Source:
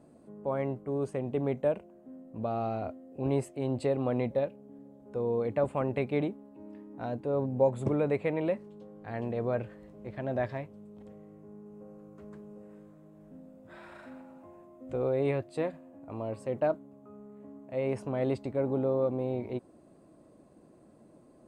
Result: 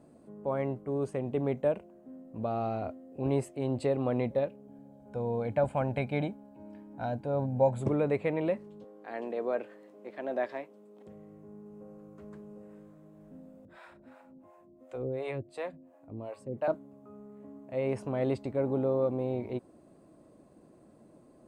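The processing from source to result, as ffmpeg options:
-filter_complex "[0:a]asettb=1/sr,asplit=3[a][b][c];[a]atrim=end=4.674[d];[b]atrim=start=4.67:end=7.81,asetpts=PTS-STARTPTS,afade=t=in:d=0.004:c=qsin,afade=t=out:st=3.136:d=0.004:c=qsin,aecho=1:1:1.3:0.54,atrim=end_sample=138474[e];[c]atrim=start=7.806[f];[d][e]acrossfade=d=0.004:c1=hsin:c2=qsin[g];[g][f]acrossfade=d=0.004:c1=qsin:c2=hsin,asettb=1/sr,asplit=3[h][i][j];[h]atrim=end=8.844[k];[i]atrim=start=8.84:end=11.07,asetpts=PTS-STARTPTS,afade=t=in:d=0.004:c=qsin,afade=t=out:st=2.226:d=0.004:c=qsin,highpass=f=270:w=0.5412,highpass=f=270:w=1.3066[l];[j]atrim=start=11.066[m];[k][l]acrossfade=d=0.004:c1=hsin:c2=qsin[n];[n][m]acrossfade=d=0.004:c1=qsin:c2=hsin,asettb=1/sr,asplit=3[o][p][q];[o]atrim=end=13.654[r];[p]atrim=start=13.65:end=16.68,asetpts=PTS-STARTPTS,afade=t=in:d=0.004:c=qsin,afade=t=out:st=3.026:d=0.004:c=qsin,acrossover=split=470[s][t];[s]aeval=exprs='val(0)*(1-1/2+1/2*cos(2*PI*2.8*n/s))':c=same[u];[t]aeval=exprs='val(0)*(1-1/2-1/2*cos(2*PI*2.8*n/s))':c=same[v];[u][v]amix=inputs=2:normalize=0[w];[q]atrim=start=16.676[x];[r][w]acrossfade=d=0.004:c1=hsin:c2=qsin[y];[y][x]acrossfade=d=0.004:c1=qsin:c2=hsin"

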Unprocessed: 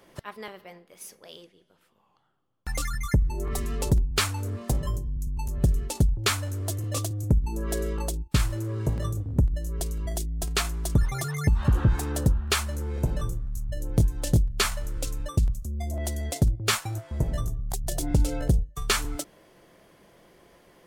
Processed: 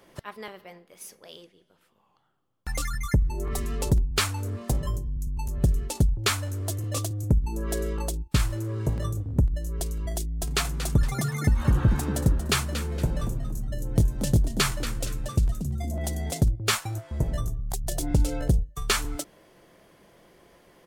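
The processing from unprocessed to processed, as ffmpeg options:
-filter_complex "[0:a]asplit=3[a][b][c];[a]afade=t=out:st=10.46:d=0.02[d];[b]asplit=5[e][f][g][h][i];[f]adelay=232,afreqshift=89,volume=-11dB[j];[g]adelay=464,afreqshift=178,volume=-20.6dB[k];[h]adelay=696,afreqshift=267,volume=-30.3dB[l];[i]adelay=928,afreqshift=356,volume=-39.9dB[m];[e][j][k][l][m]amix=inputs=5:normalize=0,afade=t=in:st=10.46:d=0.02,afade=t=out:st=16.4:d=0.02[n];[c]afade=t=in:st=16.4:d=0.02[o];[d][n][o]amix=inputs=3:normalize=0"

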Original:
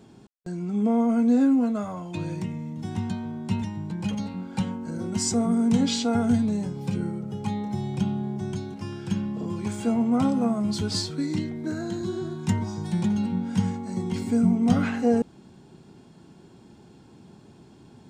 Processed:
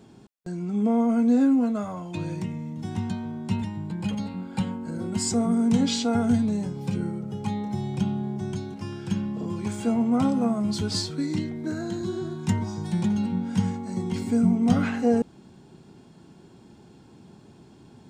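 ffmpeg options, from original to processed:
-filter_complex "[0:a]asettb=1/sr,asplit=3[a][b][c];[a]atrim=end=3.564[d];[b]atrim=start=3.56:end=5.3,asetpts=PTS-STARTPTS,afade=t=in:d=0.004:c=qsin,afade=t=out:st=1.736:d=0.004:c=qsin,bandreject=f=5.9k:w=5.7[e];[c]atrim=start=5.296[f];[d][e]acrossfade=d=0.004:c1=hsin:c2=qsin[g];[g][f]acrossfade=d=0.004:c1=qsin:c2=hsin"

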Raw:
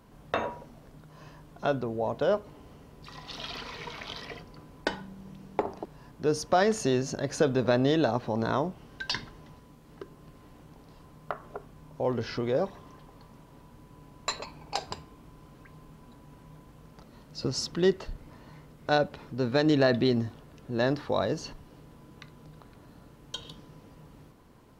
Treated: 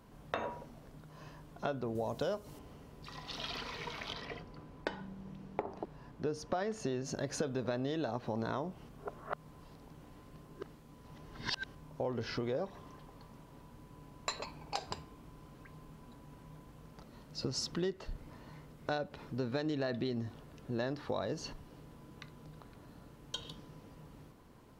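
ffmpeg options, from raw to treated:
-filter_complex "[0:a]asettb=1/sr,asplit=3[a][b][c];[a]atrim=end=1.954[d];[b]atrim=start=1.95:end=2.59,asetpts=PTS-STARTPTS,afade=t=in:d=0.004:c=qsin,afade=t=out:st=0.636:d=0.004:c=qsin,bass=f=250:g=3,treble=f=4k:g=13[e];[c]atrim=start=2.586[f];[d][e]acrossfade=d=0.004:c1=hsin:c2=qsin[g];[g][f]acrossfade=d=0.004:c1=qsin:c2=hsin,asettb=1/sr,asplit=3[h][i][j];[h]atrim=end=4.134[k];[i]atrim=start=4.13:end=7.05,asetpts=PTS-STARTPTS,afade=t=in:d=0.004:c=qsin,afade=t=out:st=2.916:d=0.004:c=qsin,aemphasis=mode=reproduction:type=cd[l];[j]atrim=start=7.046[m];[k][l]acrossfade=d=0.004:c1=hsin:c2=qsin[n];[n][m]acrossfade=d=0.004:c1=qsin:c2=hsin,asplit=3[o][p][q];[o]atrim=end=8.892[r];[p]atrim=start=8.888:end=11.752,asetpts=PTS-STARTPTS,areverse[s];[q]atrim=start=11.748[t];[r][s]acrossfade=d=0.004:c1=hsin:c2=hsin[u];[u][t]acrossfade=d=0.004:c1=hsin:c2=hsin,acompressor=threshold=-30dB:ratio=6,volume=-2.5dB"

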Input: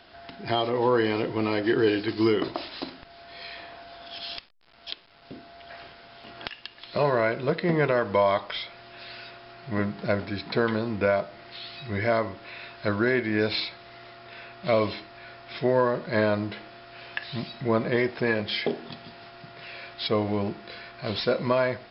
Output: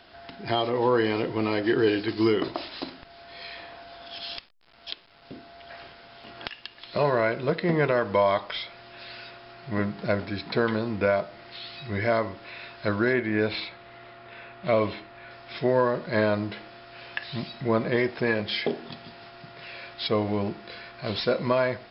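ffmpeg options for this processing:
-filter_complex "[0:a]asettb=1/sr,asplit=3[a][b][c];[a]atrim=end=13.134[d];[b]atrim=start=13.13:end=15.31,asetpts=PTS-STARTPTS,afade=t=in:d=0.004:c=qsin,afade=t=out:st=2.176:d=0.004:c=qsin,lowpass=3.2k[e];[c]atrim=start=15.306[f];[d][e]acrossfade=d=0.004:c1=hsin:c2=qsin[g];[g][f]acrossfade=d=0.004:c1=qsin:c2=hsin"

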